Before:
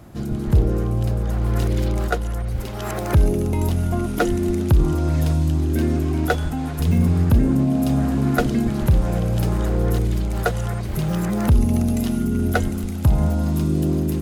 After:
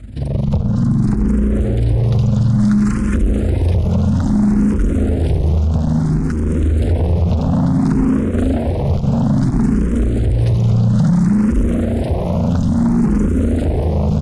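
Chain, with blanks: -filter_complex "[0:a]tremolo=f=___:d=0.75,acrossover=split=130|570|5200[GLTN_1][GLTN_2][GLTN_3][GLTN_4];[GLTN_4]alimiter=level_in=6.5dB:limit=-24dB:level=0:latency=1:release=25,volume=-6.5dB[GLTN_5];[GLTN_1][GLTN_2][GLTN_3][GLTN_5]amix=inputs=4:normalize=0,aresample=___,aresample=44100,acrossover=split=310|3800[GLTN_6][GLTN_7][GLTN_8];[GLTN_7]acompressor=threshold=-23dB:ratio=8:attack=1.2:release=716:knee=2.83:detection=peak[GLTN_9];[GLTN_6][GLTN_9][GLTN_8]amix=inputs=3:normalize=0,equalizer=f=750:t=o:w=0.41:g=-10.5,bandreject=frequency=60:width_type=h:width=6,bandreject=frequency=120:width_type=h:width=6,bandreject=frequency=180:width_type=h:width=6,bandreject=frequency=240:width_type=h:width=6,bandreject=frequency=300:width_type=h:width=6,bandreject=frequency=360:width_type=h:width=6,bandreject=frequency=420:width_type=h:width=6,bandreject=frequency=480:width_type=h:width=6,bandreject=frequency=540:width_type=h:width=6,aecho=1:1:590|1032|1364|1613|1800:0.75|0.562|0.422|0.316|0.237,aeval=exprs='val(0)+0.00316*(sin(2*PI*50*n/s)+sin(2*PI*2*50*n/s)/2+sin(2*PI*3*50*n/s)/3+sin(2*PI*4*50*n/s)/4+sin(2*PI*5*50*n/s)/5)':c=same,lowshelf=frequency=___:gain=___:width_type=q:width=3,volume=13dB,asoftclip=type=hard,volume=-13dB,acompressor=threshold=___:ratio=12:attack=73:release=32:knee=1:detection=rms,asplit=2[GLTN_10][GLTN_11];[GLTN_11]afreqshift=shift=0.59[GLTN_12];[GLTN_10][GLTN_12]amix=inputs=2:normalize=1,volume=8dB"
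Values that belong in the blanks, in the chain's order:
23, 22050, 290, 8, -21dB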